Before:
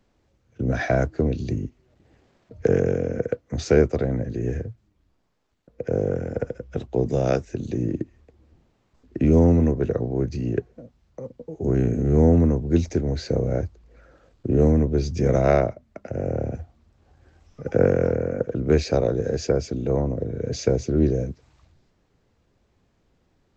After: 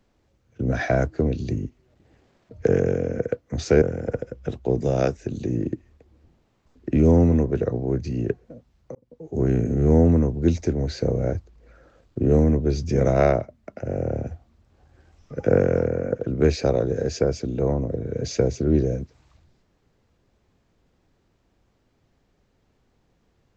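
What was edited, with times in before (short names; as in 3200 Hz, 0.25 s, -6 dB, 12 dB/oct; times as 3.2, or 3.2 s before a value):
3.82–6.1 cut
11.23–11.67 fade in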